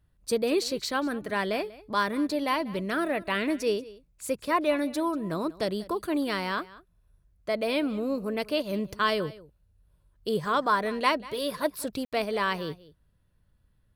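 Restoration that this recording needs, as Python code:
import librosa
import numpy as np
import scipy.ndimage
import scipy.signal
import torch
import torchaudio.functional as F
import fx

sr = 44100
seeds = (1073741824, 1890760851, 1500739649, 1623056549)

y = fx.fix_ambience(x, sr, seeds[0], print_start_s=12.96, print_end_s=13.46, start_s=12.05, end_s=12.12)
y = fx.fix_echo_inverse(y, sr, delay_ms=190, level_db=-19.5)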